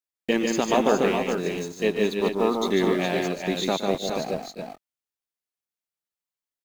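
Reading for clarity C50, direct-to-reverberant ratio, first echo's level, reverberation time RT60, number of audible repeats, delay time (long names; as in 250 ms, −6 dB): no reverb audible, no reverb audible, −14.0 dB, no reverb audible, 4, 117 ms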